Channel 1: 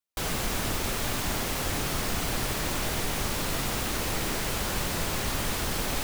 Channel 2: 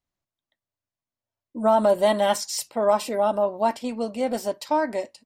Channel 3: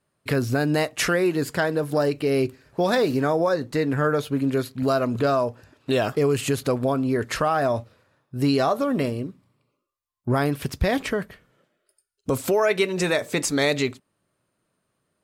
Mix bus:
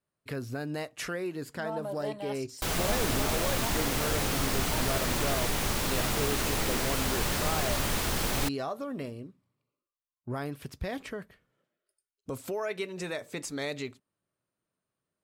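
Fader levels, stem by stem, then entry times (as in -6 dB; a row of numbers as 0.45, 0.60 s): 0.0, -18.5, -13.0 dB; 2.45, 0.00, 0.00 s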